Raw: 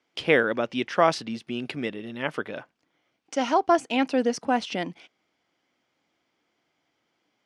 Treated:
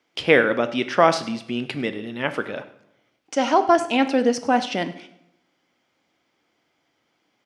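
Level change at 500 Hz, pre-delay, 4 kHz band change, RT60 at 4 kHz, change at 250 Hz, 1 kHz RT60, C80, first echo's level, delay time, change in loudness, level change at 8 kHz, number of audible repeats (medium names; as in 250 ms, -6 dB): +4.5 dB, 11 ms, +4.5 dB, 0.60 s, +4.0 dB, 0.75 s, 15.5 dB, -20.5 dB, 101 ms, +4.0 dB, +4.5 dB, 1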